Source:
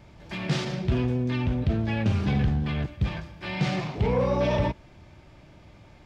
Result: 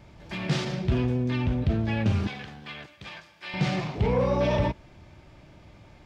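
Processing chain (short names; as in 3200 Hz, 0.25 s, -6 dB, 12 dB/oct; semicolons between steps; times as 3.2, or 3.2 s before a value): 2.27–3.54 HPF 1500 Hz 6 dB/oct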